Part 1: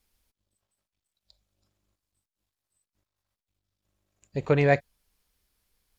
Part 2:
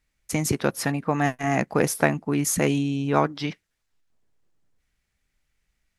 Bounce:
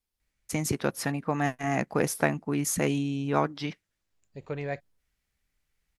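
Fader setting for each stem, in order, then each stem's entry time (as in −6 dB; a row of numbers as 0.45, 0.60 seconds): −12.5, −4.5 decibels; 0.00, 0.20 seconds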